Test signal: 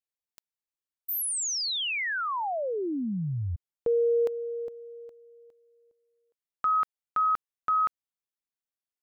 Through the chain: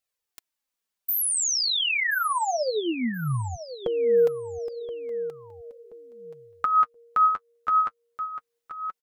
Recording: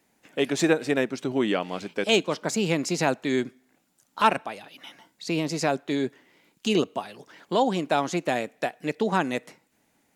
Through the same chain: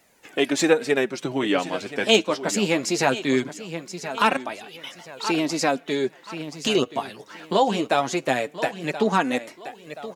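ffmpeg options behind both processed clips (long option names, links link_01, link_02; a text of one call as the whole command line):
ffmpeg -i in.wav -filter_complex "[0:a]lowshelf=frequency=400:gain=-4,aecho=1:1:1027|2054|3081:0.2|0.0579|0.0168,asplit=2[link_01][link_02];[link_02]acompressor=threshold=-40dB:ratio=6:attack=38:release=899:detection=peak,volume=0dB[link_03];[link_01][link_03]amix=inputs=2:normalize=0,flanger=delay=1.4:depth=9:regen=28:speed=0.2:shape=triangular,volume=6.5dB" out.wav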